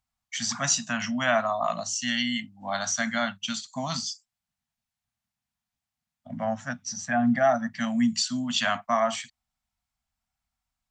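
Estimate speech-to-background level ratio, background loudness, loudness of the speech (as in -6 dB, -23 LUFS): 18.5 dB, -45.5 LUFS, -27.0 LUFS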